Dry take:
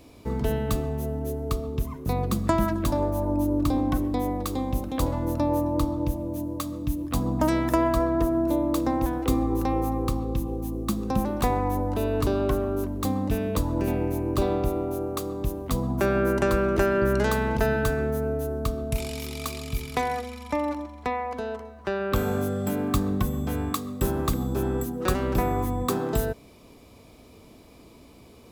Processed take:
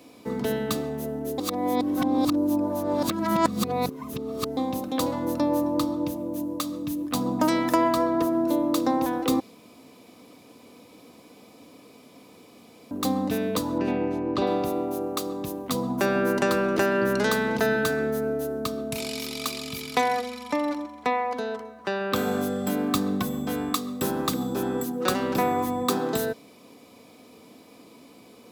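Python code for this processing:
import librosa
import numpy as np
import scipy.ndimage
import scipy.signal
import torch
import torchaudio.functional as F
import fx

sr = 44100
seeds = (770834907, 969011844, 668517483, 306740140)

y = fx.lowpass(x, sr, hz=3700.0, slope=12, at=(13.78, 14.47))
y = fx.edit(y, sr, fx.reverse_span(start_s=1.38, length_s=3.19),
    fx.room_tone_fill(start_s=9.4, length_s=3.51), tone=tone)
y = scipy.signal.sosfilt(scipy.signal.bessel(4, 180.0, 'highpass', norm='mag', fs=sr, output='sos'), y)
y = y + 0.3 * np.pad(y, (int(4.0 * sr / 1000.0), 0))[:len(y)]
y = fx.dynamic_eq(y, sr, hz=4400.0, q=1.4, threshold_db=-52.0, ratio=4.0, max_db=5)
y = F.gain(torch.from_numpy(y), 1.5).numpy()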